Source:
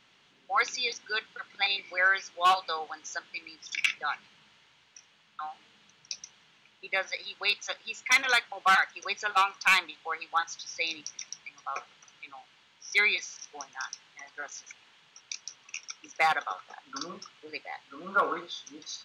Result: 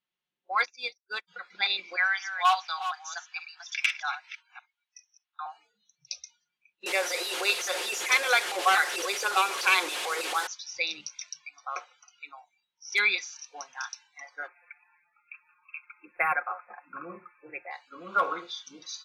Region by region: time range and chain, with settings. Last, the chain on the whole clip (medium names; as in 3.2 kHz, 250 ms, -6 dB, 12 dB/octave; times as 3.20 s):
0.65–1.28 s: block-companded coder 5-bit + distance through air 85 m + upward expansion 2.5:1, over -50 dBFS
1.96–5.46 s: chunks repeated in reverse 239 ms, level -10 dB + elliptic high-pass 730 Hz, stop band 50 dB
6.86–10.47 s: one-bit delta coder 64 kbps, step -27.5 dBFS + resonant high-pass 420 Hz, resonance Q 2.7
14.47–17.71 s: brick-wall FIR band-stop 2.7–10 kHz + comb 5.7 ms, depth 34%
whole clip: spectral noise reduction 29 dB; comb 5.6 ms, depth 38%; dynamic bell 190 Hz, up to -7 dB, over -50 dBFS, Q 0.76